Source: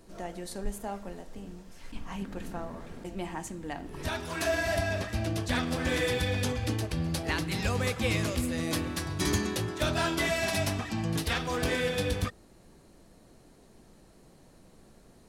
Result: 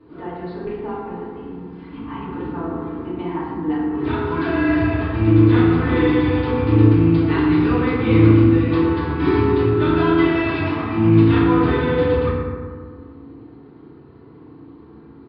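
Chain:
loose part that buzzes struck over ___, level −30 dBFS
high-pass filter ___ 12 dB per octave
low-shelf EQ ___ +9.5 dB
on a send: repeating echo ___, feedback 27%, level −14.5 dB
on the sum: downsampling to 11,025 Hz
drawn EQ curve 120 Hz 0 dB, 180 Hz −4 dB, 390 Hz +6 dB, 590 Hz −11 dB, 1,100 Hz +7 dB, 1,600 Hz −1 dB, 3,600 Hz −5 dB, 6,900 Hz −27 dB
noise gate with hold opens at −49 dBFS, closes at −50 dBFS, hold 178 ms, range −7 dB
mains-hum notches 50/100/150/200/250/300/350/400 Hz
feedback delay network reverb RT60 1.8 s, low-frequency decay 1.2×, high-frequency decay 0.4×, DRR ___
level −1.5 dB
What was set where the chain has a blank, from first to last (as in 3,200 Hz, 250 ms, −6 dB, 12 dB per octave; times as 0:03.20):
−32 dBFS, 120 Hz, 340 Hz, 116 ms, −8.5 dB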